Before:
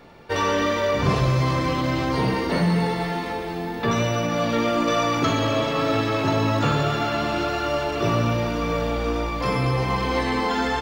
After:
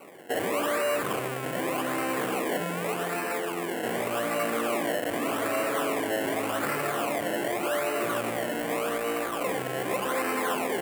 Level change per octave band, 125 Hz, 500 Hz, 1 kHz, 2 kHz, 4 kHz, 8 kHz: −19.0, −4.0, −6.0, −3.0, −8.0, +1.5 decibels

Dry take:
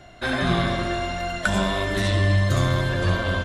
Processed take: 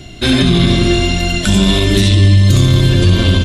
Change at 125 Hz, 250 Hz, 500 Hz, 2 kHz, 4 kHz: +13.0, +14.0, +7.5, +4.5, +14.5 decibels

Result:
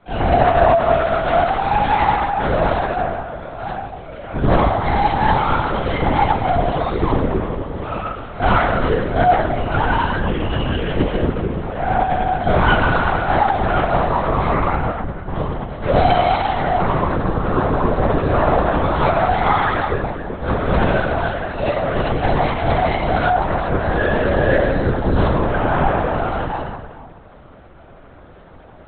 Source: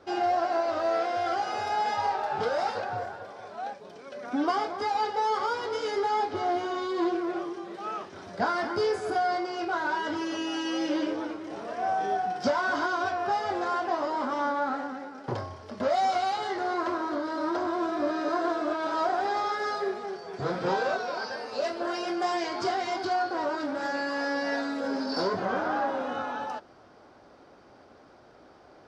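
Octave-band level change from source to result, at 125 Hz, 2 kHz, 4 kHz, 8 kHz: +26.5 dB, +10.5 dB, +7.0 dB, can't be measured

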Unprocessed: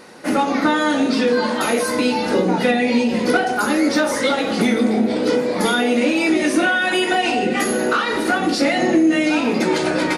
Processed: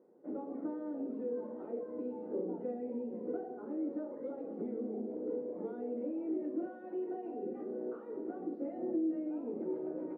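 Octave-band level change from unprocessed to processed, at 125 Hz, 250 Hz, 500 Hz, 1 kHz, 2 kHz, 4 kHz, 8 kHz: −26.0 dB, −20.0 dB, −19.0 dB, −30.0 dB, below −40 dB, below −40 dB, below −40 dB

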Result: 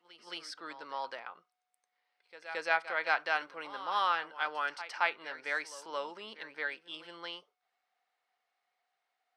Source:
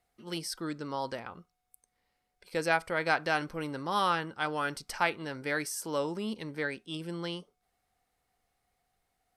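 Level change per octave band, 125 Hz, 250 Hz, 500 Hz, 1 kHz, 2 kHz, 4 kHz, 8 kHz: below −25 dB, −17.0 dB, −7.0 dB, −1.5 dB, −0.5 dB, −2.5 dB, −12.0 dB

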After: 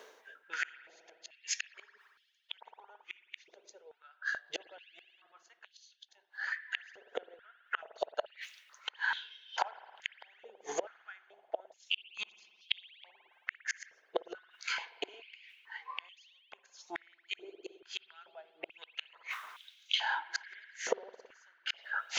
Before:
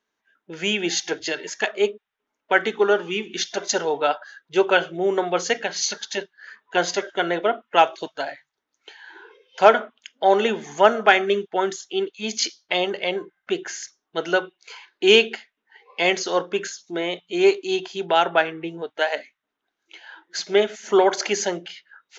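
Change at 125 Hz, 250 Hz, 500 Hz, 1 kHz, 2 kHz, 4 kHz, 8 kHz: below −35 dB, −29.5 dB, −24.0 dB, −20.5 dB, −13.5 dB, −13.5 dB, can't be measured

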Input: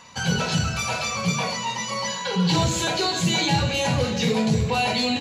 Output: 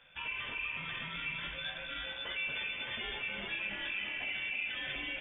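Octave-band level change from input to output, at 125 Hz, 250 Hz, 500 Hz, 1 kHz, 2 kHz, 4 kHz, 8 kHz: −30.0 dB, −28.0 dB, −24.0 dB, −22.0 dB, −7.0 dB, −13.5 dB, below −40 dB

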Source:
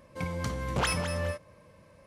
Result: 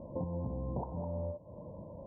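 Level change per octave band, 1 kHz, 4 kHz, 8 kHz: −10.5 dB, below −40 dB, below −40 dB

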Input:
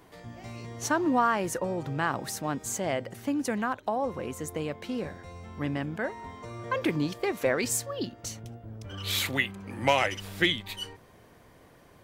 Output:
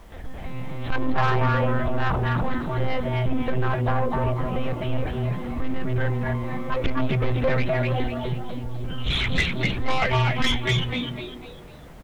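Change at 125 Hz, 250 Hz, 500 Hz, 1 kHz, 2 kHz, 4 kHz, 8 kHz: +14.0 dB, +3.5 dB, +4.0 dB, +3.5 dB, +4.0 dB, +4.0 dB, below −10 dB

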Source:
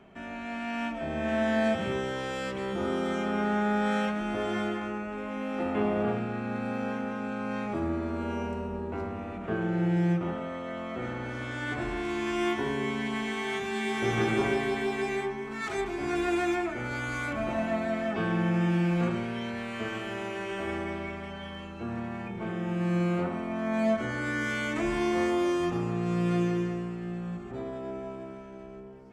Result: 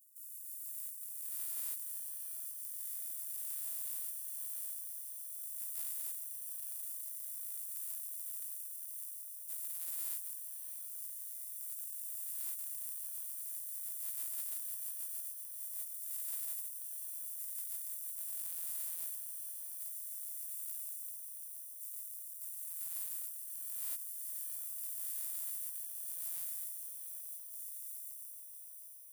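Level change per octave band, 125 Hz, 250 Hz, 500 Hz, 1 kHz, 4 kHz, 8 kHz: below −40 dB, below −40 dB, below −40 dB, below −35 dB, −19.5 dB, +9.5 dB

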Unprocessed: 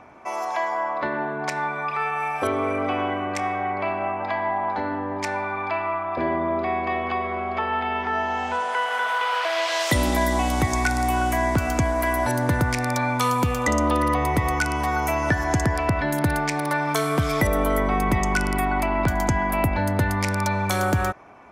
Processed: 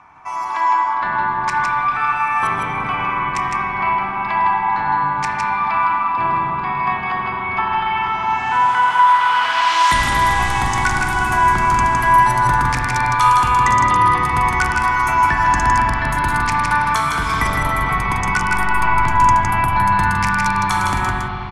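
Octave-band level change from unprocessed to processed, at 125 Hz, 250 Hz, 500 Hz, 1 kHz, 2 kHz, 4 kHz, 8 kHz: +1.5, −3.0, −6.5, +10.5, +8.0, +5.5, +3.0 decibels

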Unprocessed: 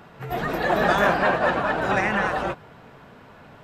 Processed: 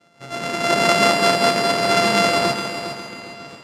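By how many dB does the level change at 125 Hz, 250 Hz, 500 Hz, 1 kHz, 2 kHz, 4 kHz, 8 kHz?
+1.5, +4.0, +4.5, +3.5, +2.0, +15.0, +19.0 decibels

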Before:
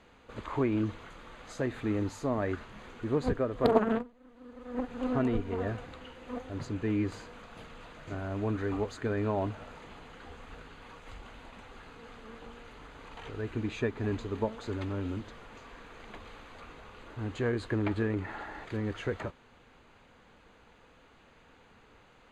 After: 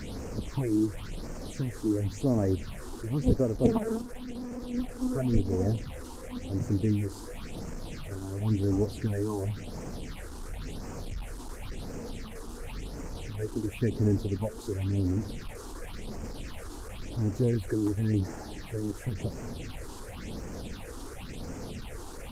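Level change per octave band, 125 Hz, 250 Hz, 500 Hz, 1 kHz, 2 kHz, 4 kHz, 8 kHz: +6.5, +3.5, 0.0, −5.0, −5.0, +2.5, +10.5 decibels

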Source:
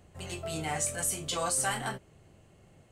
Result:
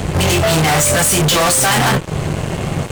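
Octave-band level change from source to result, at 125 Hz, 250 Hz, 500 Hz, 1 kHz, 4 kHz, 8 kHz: +25.5, +23.5, +20.5, +19.0, +21.0, +16.0 decibels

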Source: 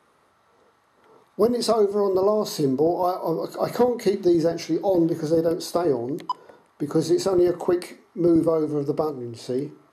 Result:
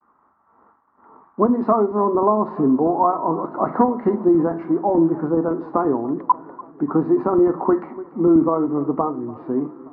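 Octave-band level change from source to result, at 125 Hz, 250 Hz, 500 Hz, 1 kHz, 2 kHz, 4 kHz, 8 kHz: +1.5 dB, +5.0 dB, +1.0 dB, +8.5 dB, 0.0 dB, below −30 dB, below −40 dB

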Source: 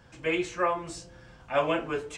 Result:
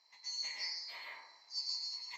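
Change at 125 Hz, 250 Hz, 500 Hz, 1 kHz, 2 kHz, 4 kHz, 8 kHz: below −40 dB, below −40 dB, −38.5 dB, −25.0 dB, −14.0 dB, +4.5 dB, −3.5 dB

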